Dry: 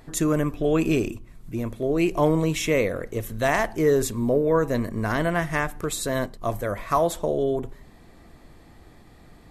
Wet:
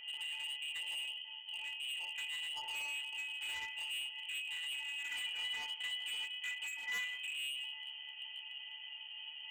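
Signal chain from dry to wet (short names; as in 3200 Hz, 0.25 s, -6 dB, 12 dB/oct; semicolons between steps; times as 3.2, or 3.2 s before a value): per-bin compression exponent 0.6; octave resonator C#, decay 0.29 s; compressor 2:1, threshold -40 dBFS, peak gain reduction 9 dB; notches 50/100/150/200/250/300/350 Hz; inverted band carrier 3100 Hz; hard clip -39.5 dBFS, distortion -9 dB; 5.07–7.2 comb 4.1 ms, depth 64%; narrowing echo 0.194 s, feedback 64%, band-pass 800 Hz, level -17 dB; gain +1 dB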